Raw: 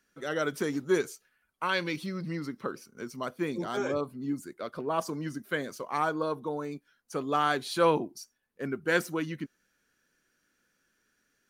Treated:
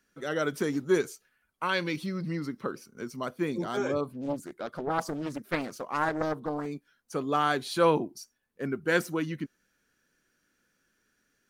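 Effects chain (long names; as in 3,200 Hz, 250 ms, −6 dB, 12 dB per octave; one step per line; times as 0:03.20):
low-shelf EQ 360 Hz +3 dB
0:04.12–0:06.66: highs frequency-modulated by the lows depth 0.96 ms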